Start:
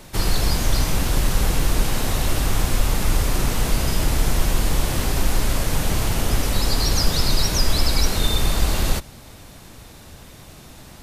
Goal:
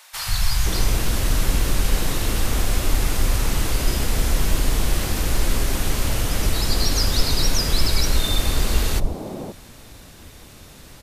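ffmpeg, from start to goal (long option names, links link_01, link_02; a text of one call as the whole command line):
ffmpeg -i in.wav -filter_complex "[0:a]acrossover=split=150|820[link_01][link_02][link_03];[link_01]adelay=130[link_04];[link_02]adelay=520[link_05];[link_04][link_05][link_03]amix=inputs=3:normalize=0" out.wav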